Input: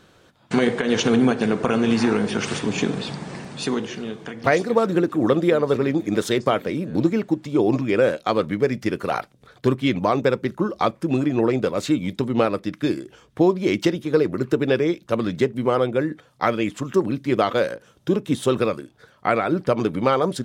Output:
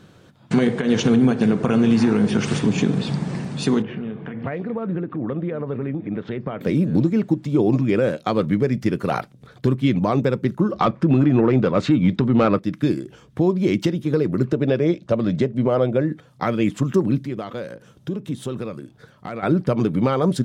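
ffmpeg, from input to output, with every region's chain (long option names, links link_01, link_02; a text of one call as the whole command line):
ffmpeg -i in.wav -filter_complex "[0:a]asettb=1/sr,asplit=3[link_01][link_02][link_03];[link_01]atrim=end=3.824[link_04];[link_02]atrim=start=3.82:end=6.61,asetpts=PTS-STARTPTS,afade=type=in:duration=0.004:curve=qsin,afade=type=out:start_time=2.786:duration=0.004:curve=qsin,lowpass=frequency=2700:width=0.5412,lowpass=frequency=2700:width=1.3066,acompressor=threshold=-32dB:ratio=2.5:attack=3.2:release=140:knee=1:detection=peak,equalizer=frequency=340:width_type=o:width=0.27:gain=-3[link_05];[link_03]atrim=start=6.606[link_06];[link_04][link_05]acrossfade=duration=0.004:curve1=hsin:curve2=qsin[link_07];[link_07][link_06]acrossfade=duration=0.004:curve1=qsin:curve2=hsin,asettb=1/sr,asplit=3[link_08][link_09][link_10];[link_08]atrim=end=10.724[link_11];[link_09]atrim=start=10.72:end=12.59,asetpts=PTS-STARTPTS,afade=type=in:duration=0.004:curve=qsin,afade=type=out:start_time=1.866:duration=0.004:curve=qsin,lowpass=4200,equalizer=frequency=1300:width=1.3:gain=5,acontrast=78[link_12];[link_10]atrim=start=12.586[link_13];[link_11][link_12]acrossfade=duration=0.004:curve1=hsin:curve2=qsin[link_14];[link_14][link_13]acrossfade=duration=0.004:curve1=qsin:curve2=hsin,asettb=1/sr,asplit=3[link_15][link_16][link_17];[link_15]atrim=end=14.464[link_18];[link_16]atrim=start=14.46:end=16.1,asetpts=PTS-STARTPTS,afade=type=in:duration=0.004:curve=qsin,afade=type=out:start_time=1.636:duration=0.004:curve=qsin,lowpass=6800,equalizer=frequency=610:width=3.6:gain=9[link_19];[link_17]atrim=start=16.096[link_20];[link_18][link_19]acrossfade=duration=0.004:curve1=hsin:curve2=qsin[link_21];[link_21][link_20]acrossfade=duration=0.004:curve1=qsin:curve2=hsin,asettb=1/sr,asplit=3[link_22][link_23][link_24];[link_22]atrim=end=17.224[link_25];[link_23]atrim=start=17.22:end=19.43,asetpts=PTS-STARTPTS,afade=type=in:duration=0.004:curve=qsin,afade=type=out:start_time=2.206:duration=0.004:curve=qsin,acompressor=threshold=-39dB:ratio=2:attack=3.2:release=140:knee=1:detection=peak,asoftclip=type=hard:threshold=-21.5dB[link_26];[link_24]atrim=start=19.426[link_27];[link_25][link_26]acrossfade=duration=0.004:curve1=hsin:curve2=qsin[link_28];[link_28][link_27]acrossfade=duration=0.004:curve1=qsin:curve2=hsin,equalizer=frequency=150:width=0.7:gain=10.5,alimiter=limit=-8dB:level=0:latency=1:release=311" out.wav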